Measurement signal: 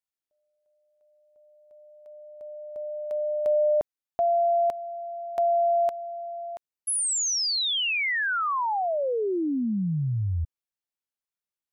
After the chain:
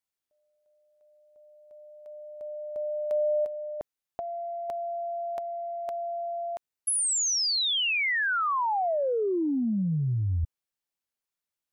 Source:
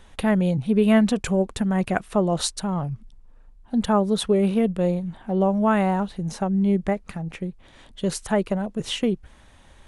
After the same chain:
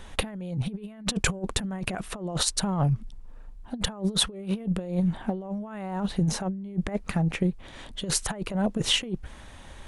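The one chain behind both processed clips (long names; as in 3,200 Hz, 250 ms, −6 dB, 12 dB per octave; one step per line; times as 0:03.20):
compressor whose output falls as the input rises −27 dBFS, ratio −0.5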